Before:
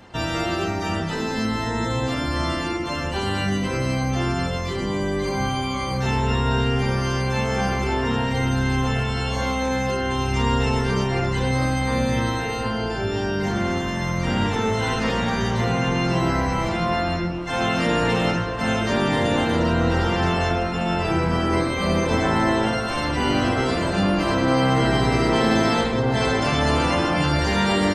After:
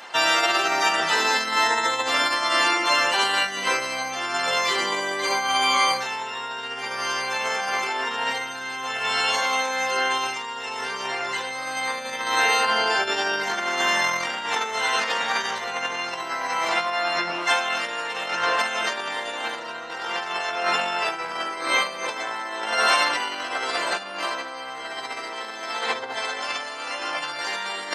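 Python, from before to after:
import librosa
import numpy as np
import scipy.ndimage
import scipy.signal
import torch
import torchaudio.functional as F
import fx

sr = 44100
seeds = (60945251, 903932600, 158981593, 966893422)

y = fx.doubler(x, sr, ms=38.0, db=-6.5, at=(26.33, 27.17), fade=0.02)
y = fx.over_compress(y, sr, threshold_db=-25.0, ratio=-0.5)
y = scipy.signal.sosfilt(scipy.signal.butter(2, 860.0, 'highpass', fs=sr, output='sos'), y)
y = F.gain(torch.from_numpy(y), 7.0).numpy()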